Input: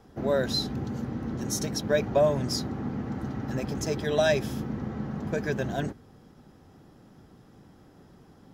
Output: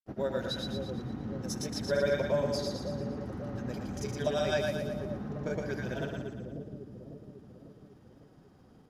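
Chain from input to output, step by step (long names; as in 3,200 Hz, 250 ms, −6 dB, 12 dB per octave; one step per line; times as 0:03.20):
granular cloud, pitch spread up and down by 0 semitones
wrong playback speed 25 fps video run at 24 fps
echo with a time of its own for lows and highs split 520 Hz, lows 548 ms, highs 116 ms, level −4 dB
level −6 dB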